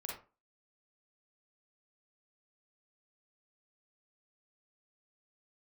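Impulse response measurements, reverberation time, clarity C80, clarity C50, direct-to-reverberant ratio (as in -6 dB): 0.35 s, 9.5 dB, 2.0 dB, -2.5 dB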